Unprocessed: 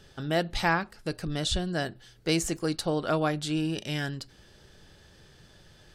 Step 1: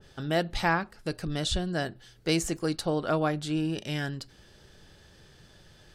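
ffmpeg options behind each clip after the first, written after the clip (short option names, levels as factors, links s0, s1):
-af "adynamicequalizer=threshold=0.00891:dfrequency=2100:dqfactor=0.7:tfrequency=2100:tqfactor=0.7:attack=5:release=100:ratio=0.375:range=2.5:mode=cutabove:tftype=highshelf"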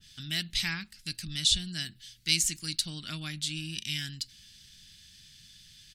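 -af "firequalizer=gain_entry='entry(210,0);entry(470,-25);entry(2100,8);entry(3600,14)':delay=0.05:min_phase=1,volume=0.473"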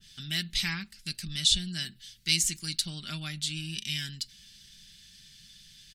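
-af "aecho=1:1:5.1:0.4"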